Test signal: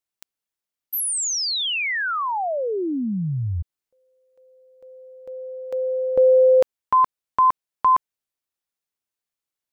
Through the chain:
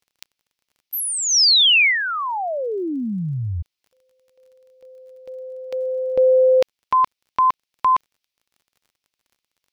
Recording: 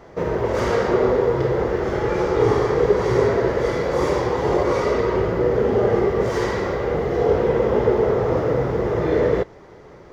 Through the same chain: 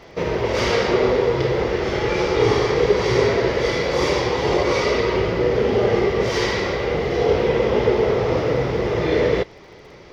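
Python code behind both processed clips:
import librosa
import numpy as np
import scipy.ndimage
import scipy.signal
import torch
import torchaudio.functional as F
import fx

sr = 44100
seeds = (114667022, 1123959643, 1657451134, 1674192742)

y = fx.band_shelf(x, sr, hz=3500.0, db=10.5, octaves=1.7)
y = fx.dmg_crackle(y, sr, seeds[0], per_s=29.0, level_db=-46.0)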